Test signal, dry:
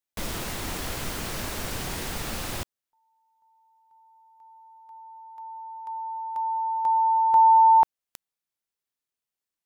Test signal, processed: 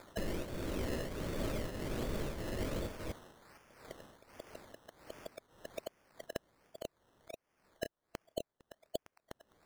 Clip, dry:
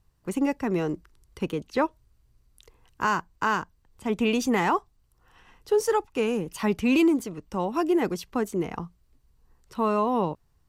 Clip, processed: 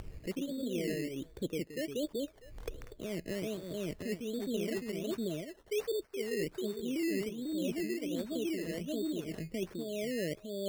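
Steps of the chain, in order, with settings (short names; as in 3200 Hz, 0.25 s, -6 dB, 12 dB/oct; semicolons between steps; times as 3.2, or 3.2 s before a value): echoes that change speed 82 ms, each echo -1 st, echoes 2; brick-wall FIR band-stop 670–4100 Hz; high shelf 12000 Hz -6.5 dB; in parallel at +1 dB: upward compressor 4:1, threshold -26 dBFS; on the sum: tremolo triangle 1.6 Hz, depth 85%; tone controls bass -5 dB, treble -9 dB; thin delay 0.456 s, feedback 32%, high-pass 1800 Hz, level -11 dB; decimation with a swept rate 15×, swing 60% 1.3 Hz; reverse; compressor 5:1, threshold -34 dBFS; reverse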